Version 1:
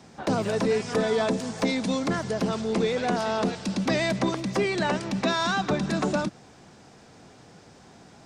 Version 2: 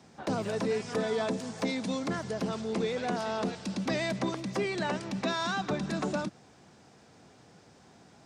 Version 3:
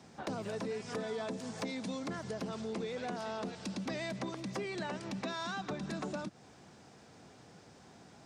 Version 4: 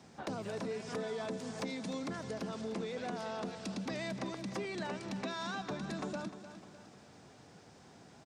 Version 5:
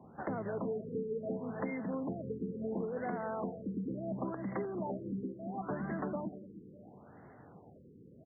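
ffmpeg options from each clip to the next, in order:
ffmpeg -i in.wav -af "highpass=56,volume=-6dB" out.wav
ffmpeg -i in.wav -af "acompressor=threshold=-38dB:ratio=3" out.wav
ffmpeg -i in.wav -af "aecho=1:1:303|606|909|1212|1515:0.251|0.116|0.0532|0.0244|0.0112,volume=-1dB" out.wav
ffmpeg -i in.wav -af "afftfilt=real='re*lt(b*sr/1024,490*pow(2200/490,0.5+0.5*sin(2*PI*0.72*pts/sr)))':imag='im*lt(b*sr/1024,490*pow(2200/490,0.5+0.5*sin(2*PI*0.72*pts/sr)))':win_size=1024:overlap=0.75,volume=2.5dB" out.wav

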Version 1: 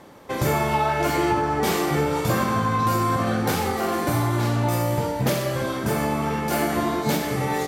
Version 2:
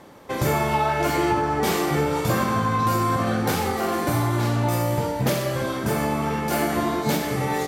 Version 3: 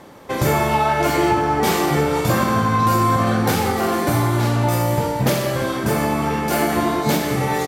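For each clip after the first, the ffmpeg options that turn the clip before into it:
ffmpeg -i in.wav -af anull out.wav
ffmpeg -i in.wav -af "aecho=1:1:173|346|519|692:0.178|0.0729|0.0299|0.0123,volume=4dB" out.wav

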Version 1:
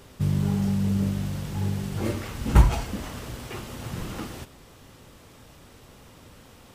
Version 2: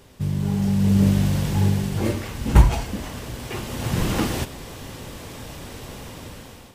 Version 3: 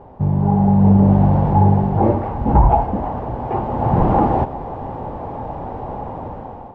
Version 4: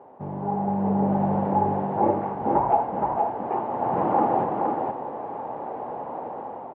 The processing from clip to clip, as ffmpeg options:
ffmpeg -i in.wav -af "equalizer=frequency=1300:width=7:gain=-5.5,dynaudnorm=framelen=370:gausssize=5:maxgain=14.5dB,volume=-1dB" out.wav
ffmpeg -i in.wav -af "lowpass=frequency=820:width_type=q:width=4.9,alimiter=level_in=9dB:limit=-1dB:release=50:level=0:latency=1,volume=-2.5dB" out.wav
ffmpeg -i in.wav -af "highpass=310,lowpass=2500,aecho=1:1:468:0.631,volume=-4.5dB" out.wav

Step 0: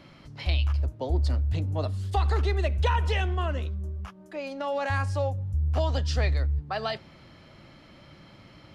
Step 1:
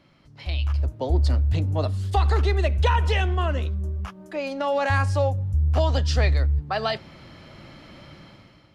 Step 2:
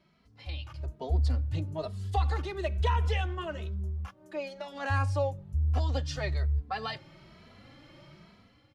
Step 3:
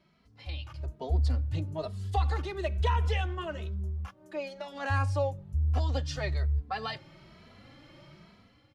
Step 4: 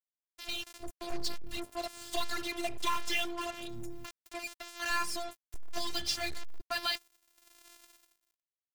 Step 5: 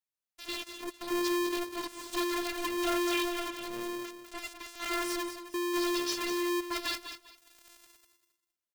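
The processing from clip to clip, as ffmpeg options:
ffmpeg -i in.wav -af "dynaudnorm=framelen=250:gausssize=5:maxgain=14dB,volume=-7.5dB" out.wav
ffmpeg -i in.wav -filter_complex "[0:a]asplit=2[link_01][link_02];[link_02]adelay=2.7,afreqshift=1.1[link_03];[link_01][link_03]amix=inputs=2:normalize=1,volume=-5.5dB" out.wav
ffmpeg -i in.wav -af anull out.wav
ffmpeg -i in.wav -af "crystalizer=i=7:c=0,afftfilt=real='hypot(re,im)*cos(PI*b)':imag='0':win_size=512:overlap=0.75,acrusher=bits=5:mix=0:aa=0.5,volume=-2dB" out.wav
ffmpeg -i in.wav -af "asoftclip=type=tanh:threshold=-22dB,aecho=1:1:199|398|597:0.335|0.0837|0.0209,aeval=exprs='val(0)*sgn(sin(2*PI*350*n/s))':channel_layout=same" out.wav

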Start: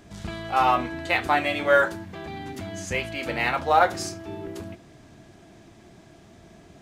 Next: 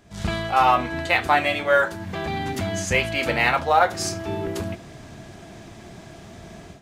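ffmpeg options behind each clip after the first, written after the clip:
ffmpeg -i in.wav -af "dynaudnorm=framelen=110:gausssize=3:maxgain=13.5dB,equalizer=frequency=310:width_type=o:width=0.58:gain=-4.5,volume=-4dB" out.wav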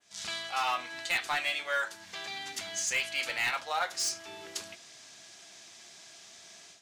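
ffmpeg -i in.wav -af "bandpass=frequency=5800:width_type=q:width=1.2:csg=0,asoftclip=type=hard:threshold=-25.5dB,adynamicequalizer=threshold=0.00355:dfrequency=5400:dqfactor=0.74:tfrequency=5400:tqfactor=0.74:attack=5:release=100:ratio=0.375:range=2.5:mode=cutabove:tftype=bell,volume=4dB" out.wav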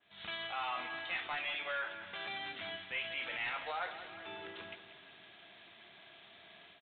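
ffmpeg -i in.wav -af "alimiter=level_in=5dB:limit=-24dB:level=0:latency=1:release=36,volume=-5dB,aresample=8000,acrusher=bits=5:mode=log:mix=0:aa=0.000001,aresample=44100,aecho=1:1:184|368|552|736|920|1104:0.251|0.141|0.0788|0.0441|0.0247|0.0138,volume=-1dB" out.wav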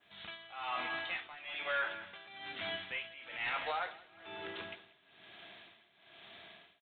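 ffmpeg -i in.wav -af "tremolo=f=1.1:d=0.85,volume=4dB" out.wav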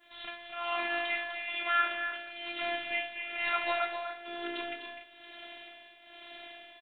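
ffmpeg -i in.wav -filter_complex "[0:a]afftfilt=real='hypot(re,im)*cos(PI*b)':imag='0':win_size=512:overlap=0.75,asplit=2[link_01][link_02];[link_02]aecho=0:1:250|286:0.398|0.282[link_03];[link_01][link_03]amix=inputs=2:normalize=0,volume=9dB" out.wav

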